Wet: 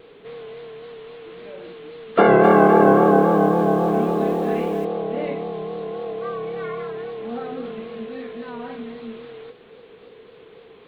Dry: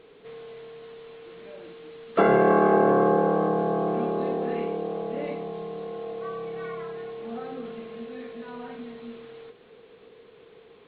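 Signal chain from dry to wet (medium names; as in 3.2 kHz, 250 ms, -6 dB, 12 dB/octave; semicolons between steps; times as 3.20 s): vibrato 3.7 Hz 58 cents; 2.18–4.85 s: bit-crushed delay 255 ms, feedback 35%, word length 8-bit, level -8 dB; trim +5.5 dB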